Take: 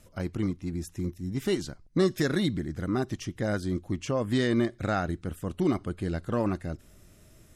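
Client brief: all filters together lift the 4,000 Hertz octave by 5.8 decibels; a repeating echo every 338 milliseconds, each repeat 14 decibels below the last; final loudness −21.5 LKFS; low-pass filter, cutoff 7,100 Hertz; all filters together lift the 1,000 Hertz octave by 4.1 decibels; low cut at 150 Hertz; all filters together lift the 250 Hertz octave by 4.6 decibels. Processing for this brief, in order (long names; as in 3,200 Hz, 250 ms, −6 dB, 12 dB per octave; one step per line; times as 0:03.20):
high-pass filter 150 Hz
low-pass filter 7,100 Hz
parametric band 250 Hz +6.5 dB
parametric band 1,000 Hz +5 dB
parametric band 4,000 Hz +7 dB
repeating echo 338 ms, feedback 20%, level −14 dB
level +5 dB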